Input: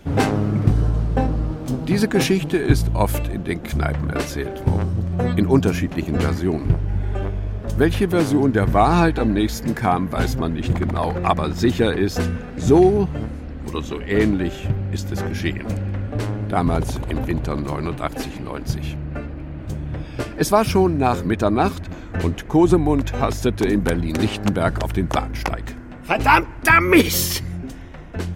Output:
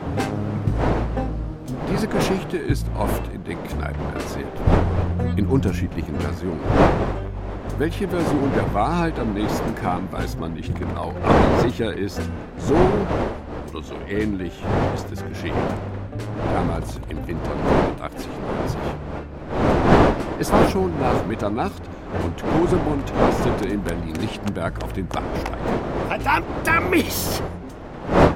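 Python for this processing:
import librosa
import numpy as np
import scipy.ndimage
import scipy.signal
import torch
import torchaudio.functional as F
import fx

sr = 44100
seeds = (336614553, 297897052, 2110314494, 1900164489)

y = fx.dmg_wind(x, sr, seeds[0], corner_hz=620.0, level_db=-19.0)
y = fx.low_shelf(y, sr, hz=99.0, db=10.5, at=(4.57, 6.06))
y = F.gain(torch.from_numpy(y), -5.5).numpy()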